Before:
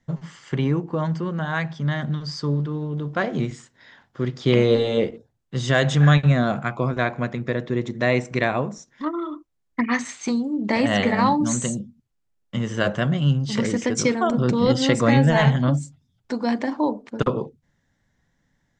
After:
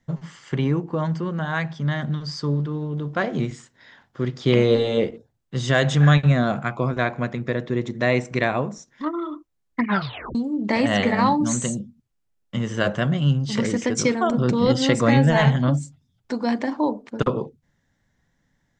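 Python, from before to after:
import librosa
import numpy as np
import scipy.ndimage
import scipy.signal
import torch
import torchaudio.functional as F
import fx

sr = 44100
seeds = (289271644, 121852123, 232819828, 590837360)

y = fx.edit(x, sr, fx.tape_stop(start_s=9.85, length_s=0.5), tone=tone)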